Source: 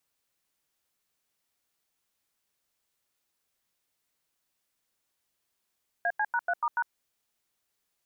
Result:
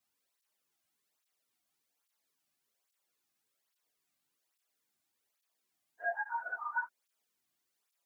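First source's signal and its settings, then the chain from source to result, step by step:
touch tones "AC#3*#", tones 54 ms, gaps 90 ms, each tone −27 dBFS
random phases in long frames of 100 ms
downward compressor 1.5 to 1, threshold −35 dBFS
through-zero flanger with one copy inverted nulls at 1.2 Hz, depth 2.3 ms

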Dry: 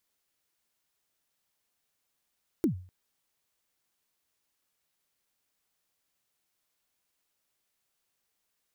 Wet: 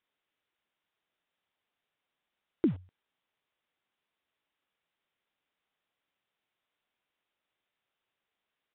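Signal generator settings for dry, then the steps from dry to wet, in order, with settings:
synth kick length 0.25 s, from 370 Hz, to 91 Hz, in 107 ms, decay 0.43 s, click on, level −19 dB
low-shelf EQ 120 Hz −9 dB
in parallel at −8 dB: bit reduction 7 bits
on the sum: downsampling to 8,000 Hz

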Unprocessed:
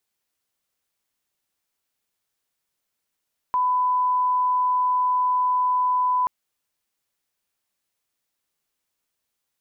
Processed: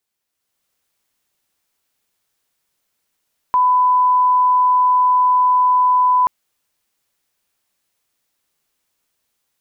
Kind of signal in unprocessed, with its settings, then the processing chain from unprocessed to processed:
line-up tone −18 dBFS 2.73 s
automatic gain control gain up to 7.5 dB

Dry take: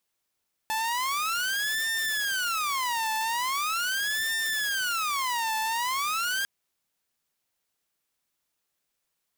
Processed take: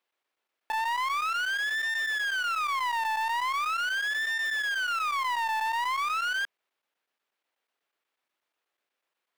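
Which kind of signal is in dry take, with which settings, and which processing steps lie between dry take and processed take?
siren wail 877–1,800 Hz 0.41 per second saw −23.5 dBFS 5.75 s
three-way crossover with the lows and the highs turned down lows −22 dB, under 290 Hz, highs −16 dB, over 3,500 Hz
square-wave tremolo 8.2 Hz, depth 65%, duty 90%
in parallel at −6.5 dB: soft clipping −38 dBFS

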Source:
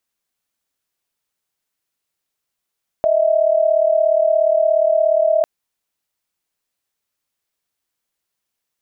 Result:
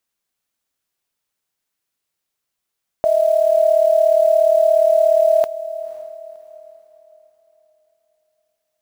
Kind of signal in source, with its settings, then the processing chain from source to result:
held notes D#5/E5 sine, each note −15 dBFS 2.40 s
noise that follows the level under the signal 30 dB
feedback delay with all-pass diffusion 528 ms, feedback 40%, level −15.5 dB

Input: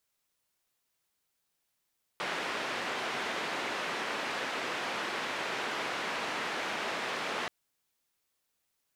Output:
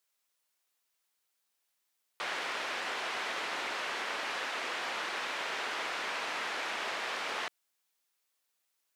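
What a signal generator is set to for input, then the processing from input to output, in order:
band-limited noise 260–2,200 Hz, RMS −35 dBFS 5.28 s
high-pass filter 620 Hz 6 dB per octave
highs frequency-modulated by the lows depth 0.15 ms

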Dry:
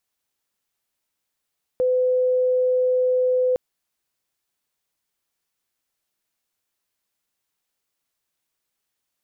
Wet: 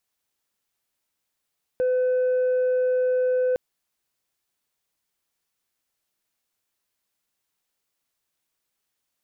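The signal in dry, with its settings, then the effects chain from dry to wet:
tone sine 506 Hz −16.5 dBFS 1.76 s
soft clipping −18 dBFS

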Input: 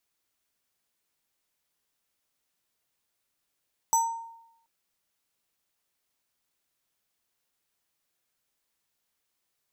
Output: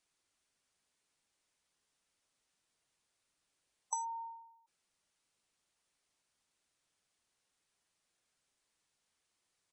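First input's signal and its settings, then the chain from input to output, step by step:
two-operator FM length 0.73 s, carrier 917 Hz, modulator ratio 7.58, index 1.1, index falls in 0.62 s exponential, decay 0.83 s, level −17.5 dB
gate on every frequency bin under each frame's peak −15 dB strong
downward compressor 16 to 1, threshold −35 dBFS
downsampling to 22,050 Hz

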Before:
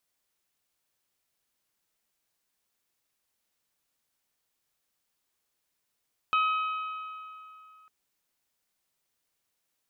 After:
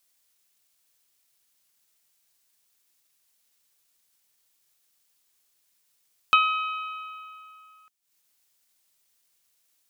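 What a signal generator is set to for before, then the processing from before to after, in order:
struck metal bell, lowest mode 1,270 Hz, modes 4, decay 2.78 s, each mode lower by 7.5 dB, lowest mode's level −21.5 dB
high-shelf EQ 2,300 Hz +11 dB
transient designer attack +6 dB, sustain −11 dB

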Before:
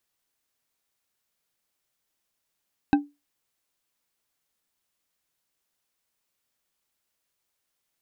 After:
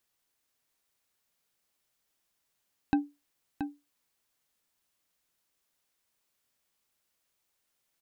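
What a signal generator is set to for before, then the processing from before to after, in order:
struck glass bar, lowest mode 289 Hz, decay 0.23 s, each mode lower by 6 dB, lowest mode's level −12 dB
brickwall limiter −16 dBFS
single-tap delay 677 ms −8 dB

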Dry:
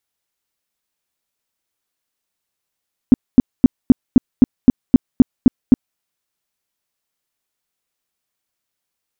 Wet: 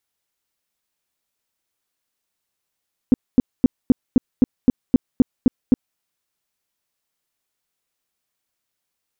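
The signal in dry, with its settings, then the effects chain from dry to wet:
tone bursts 253 Hz, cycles 5, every 0.26 s, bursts 11, −1.5 dBFS
brickwall limiter −7 dBFS
highs frequency-modulated by the lows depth 0.13 ms

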